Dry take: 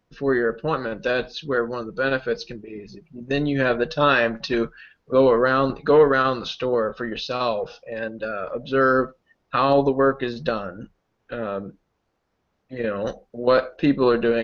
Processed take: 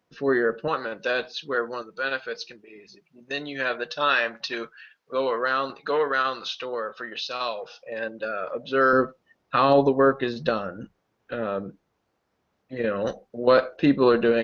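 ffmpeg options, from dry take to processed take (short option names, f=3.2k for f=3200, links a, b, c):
-af "asetnsamples=n=441:p=0,asendcmd='0.68 highpass f 620;1.82 highpass f 1300;7.8 highpass f 390;8.93 highpass f 93',highpass=f=230:p=1"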